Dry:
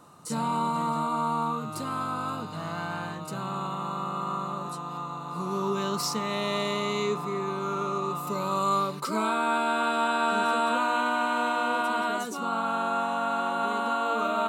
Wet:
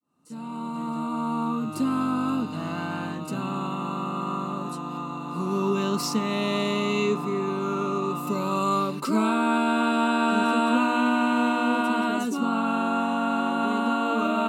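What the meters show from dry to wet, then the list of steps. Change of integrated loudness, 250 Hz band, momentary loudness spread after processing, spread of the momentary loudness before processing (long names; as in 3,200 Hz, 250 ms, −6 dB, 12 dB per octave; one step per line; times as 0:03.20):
+3.0 dB, +9.0 dB, 9 LU, 9 LU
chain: fade in at the beginning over 2.00 s
hollow resonant body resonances 260/2,700 Hz, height 15 dB, ringing for 45 ms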